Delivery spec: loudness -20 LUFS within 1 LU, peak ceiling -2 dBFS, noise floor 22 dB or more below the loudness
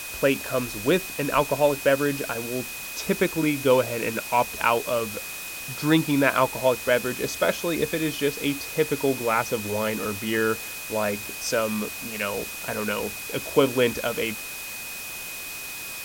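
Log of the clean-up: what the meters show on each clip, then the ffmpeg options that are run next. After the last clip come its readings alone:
steady tone 2500 Hz; tone level -37 dBFS; noise floor -36 dBFS; noise floor target -47 dBFS; loudness -25.0 LUFS; peak -4.0 dBFS; loudness target -20.0 LUFS
-> -af "bandreject=f=2.5k:w=30"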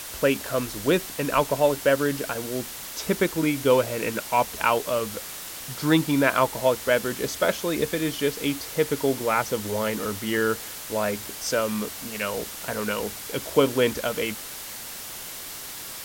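steady tone none; noise floor -37 dBFS; noise floor target -48 dBFS
-> -af "afftdn=nr=11:nf=-37"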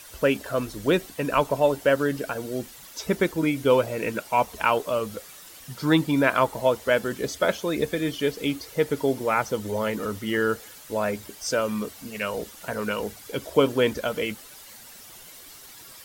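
noise floor -46 dBFS; noise floor target -48 dBFS
-> -af "afftdn=nr=6:nf=-46"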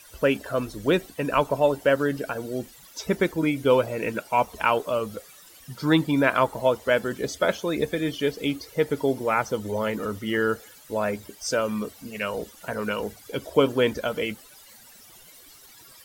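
noise floor -50 dBFS; loudness -25.5 LUFS; peak -4.5 dBFS; loudness target -20.0 LUFS
-> -af "volume=5.5dB,alimiter=limit=-2dB:level=0:latency=1"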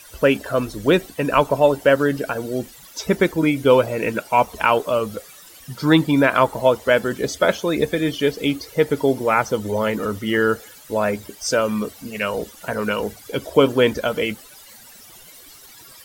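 loudness -20.0 LUFS; peak -2.0 dBFS; noise floor -45 dBFS

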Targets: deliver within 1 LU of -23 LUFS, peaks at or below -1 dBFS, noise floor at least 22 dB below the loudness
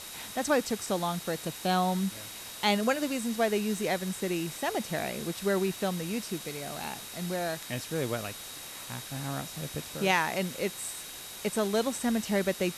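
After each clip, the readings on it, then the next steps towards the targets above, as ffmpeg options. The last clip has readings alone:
steady tone 3800 Hz; tone level -49 dBFS; noise floor -43 dBFS; noise floor target -53 dBFS; loudness -31.0 LUFS; peak -12.5 dBFS; loudness target -23.0 LUFS
-> -af "bandreject=f=3.8k:w=30"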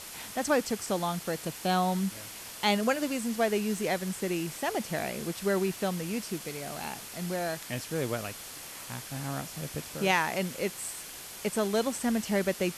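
steady tone none; noise floor -44 dBFS; noise floor target -54 dBFS
-> -af "afftdn=nr=10:nf=-44"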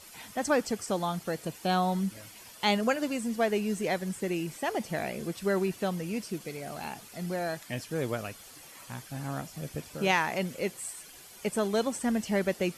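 noise floor -50 dBFS; noise floor target -54 dBFS
-> -af "afftdn=nr=6:nf=-50"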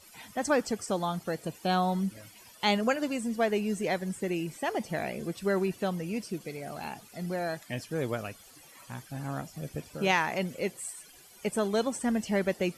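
noise floor -54 dBFS; loudness -31.5 LUFS; peak -13.0 dBFS; loudness target -23.0 LUFS
-> -af "volume=8.5dB"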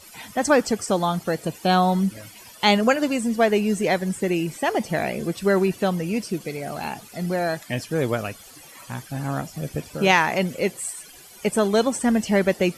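loudness -23.0 LUFS; peak -4.5 dBFS; noise floor -46 dBFS

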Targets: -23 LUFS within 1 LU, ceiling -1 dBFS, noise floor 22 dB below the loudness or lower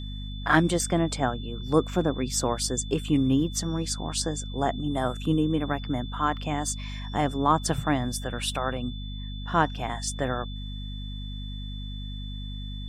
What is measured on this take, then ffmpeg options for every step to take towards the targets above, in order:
hum 50 Hz; harmonics up to 250 Hz; hum level -33 dBFS; steady tone 3500 Hz; tone level -43 dBFS; loudness -28.0 LUFS; peak -6.5 dBFS; loudness target -23.0 LUFS
-> -af "bandreject=f=50:t=h:w=6,bandreject=f=100:t=h:w=6,bandreject=f=150:t=h:w=6,bandreject=f=200:t=h:w=6,bandreject=f=250:t=h:w=6"
-af "bandreject=f=3.5k:w=30"
-af "volume=5dB"

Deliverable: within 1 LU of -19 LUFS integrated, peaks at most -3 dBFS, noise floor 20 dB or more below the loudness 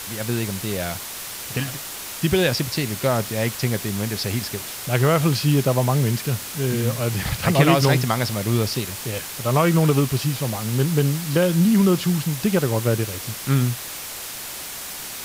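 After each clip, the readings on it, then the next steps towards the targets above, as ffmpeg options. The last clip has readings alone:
noise floor -33 dBFS; noise floor target -42 dBFS; loudness -22.0 LUFS; peak -4.0 dBFS; loudness target -19.0 LUFS
-> -af "afftdn=nr=9:nf=-33"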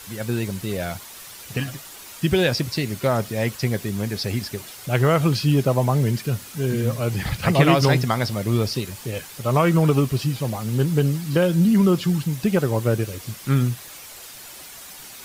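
noise floor -41 dBFS; noise floor target -42 dBFS
-> -af "afftdn=nr=6:nf=-41"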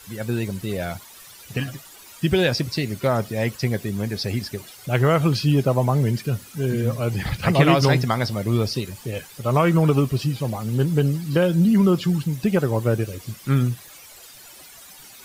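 noise floor -45 dBFS; loudness -22.0 LUFS; peak -4.0 dBFS; loudness target -19.0 LUFS
-> -af "volume=3dB,alimiter=limit=-3dB:level=0:latency=1"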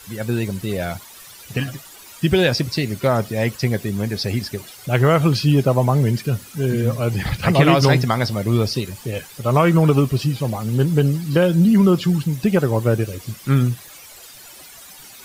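loudness -19.0 LUFS; peak -3.0 dBFS; noise floor -42 dBFS

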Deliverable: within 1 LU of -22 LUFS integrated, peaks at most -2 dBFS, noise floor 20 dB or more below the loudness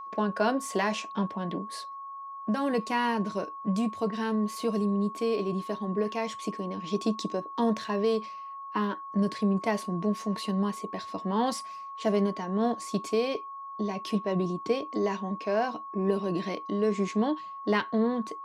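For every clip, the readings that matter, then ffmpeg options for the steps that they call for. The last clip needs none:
steady tone 1100 Hz; tone level -38 dBFS; loudness -30.0 LUFS; peak -12.0 dBFS; loudness target -22.0 LUFS
-> -af "bandreject=f=1.1k:w=30"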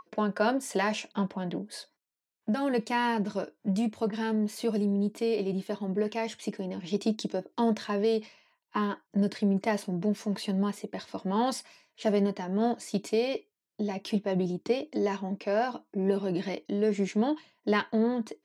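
steady tone none; loudness -30.0 LUFS; peak -12.5 dBFS; loudness target -22.0 LUFS
-> -af "volume=8dB"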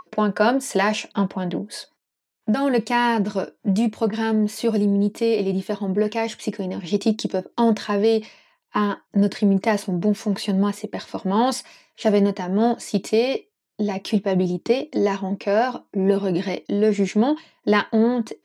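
loudness -22.0 LUFS; peak -4.5 dBFS; noise floor -77 dBFS

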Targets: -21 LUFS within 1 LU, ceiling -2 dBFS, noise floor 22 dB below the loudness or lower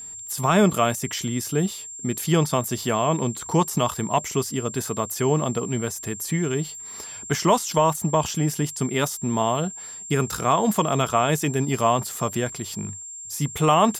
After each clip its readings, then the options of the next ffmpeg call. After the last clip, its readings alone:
steady tone 7400 Hz; tone level -35 dBFS; loudness -23.5 LUFS; peak -8.0 dBFS; loudness target -21.0 LUFS
-> -af "bandreject=f=7.4k:w=30"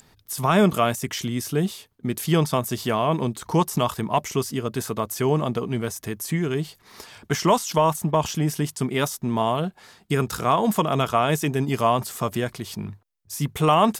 steady tone none; loudness -24.0 LUFS; peak -8.0 dBFS; loudness target -21.0 LUFS
-> -af "volume=3dB"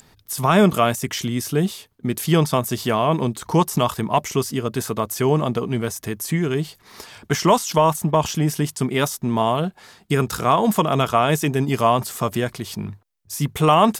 loudness -21.0 LUFS; peak -5.0 dBFS; noise floor -56 dBFS

